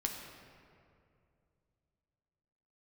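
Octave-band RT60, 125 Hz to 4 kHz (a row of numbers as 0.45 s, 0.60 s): 3.4 s, 2.9 s, 2.7 s, 2.2 s, 1.9 s, 1.3 s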